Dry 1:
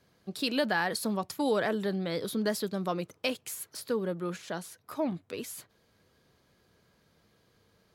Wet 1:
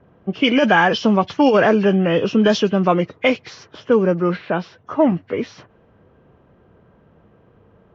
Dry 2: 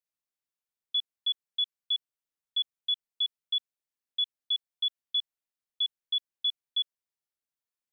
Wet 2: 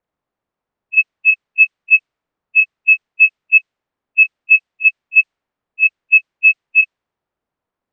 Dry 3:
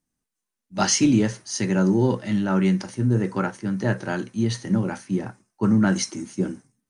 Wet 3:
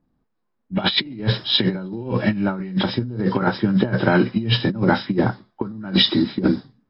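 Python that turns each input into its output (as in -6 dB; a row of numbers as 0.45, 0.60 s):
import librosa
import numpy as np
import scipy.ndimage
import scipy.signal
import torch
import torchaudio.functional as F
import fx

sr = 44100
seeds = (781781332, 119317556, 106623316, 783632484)

y = fx.freq_compress(x, sr, knee_hz=1500.0, ratio=1.5)
y = fx.env_lowpass(y, sr, base_hz=1100.0, full_db=-21.0)
y = fx.over_compress(y, sr, threshold_db=-27.0, ratio=-0.5)
y = y * 10.0 ** (-1.5 / 20.0) / np.max(np.abs(y))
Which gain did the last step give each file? +15.5, +21.5, +8.0 dB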